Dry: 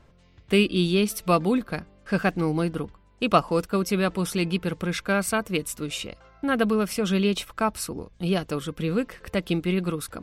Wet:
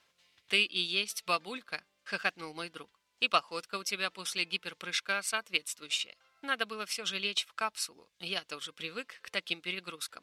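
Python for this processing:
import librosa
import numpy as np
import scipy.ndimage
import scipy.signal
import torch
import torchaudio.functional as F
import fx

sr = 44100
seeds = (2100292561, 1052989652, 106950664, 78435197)

y = fx.quant_dither(x, sr, seeds[0], bits=12, dither='triangular')
y = fx.bandpass_q(y, sr, hz=3900.0, q=0.86)
y = fx.transient(y, sr, attack_db=3, sustain_db=-5)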